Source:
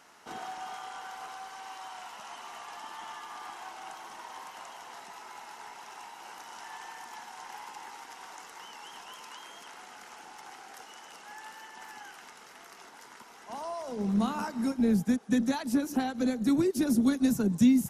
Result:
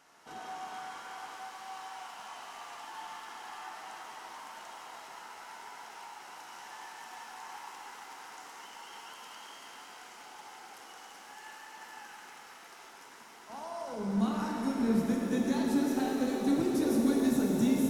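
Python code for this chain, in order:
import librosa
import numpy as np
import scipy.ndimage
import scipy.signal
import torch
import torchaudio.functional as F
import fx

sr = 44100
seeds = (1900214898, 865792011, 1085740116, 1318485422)

y = fx.rev_shimmer(x, sr, seeds[0], rt60_s=3.8, semitones=7, shimmer_db=-8, drr_db=-1.5)
y = y * librosa.db_to_amplitude(-6.0)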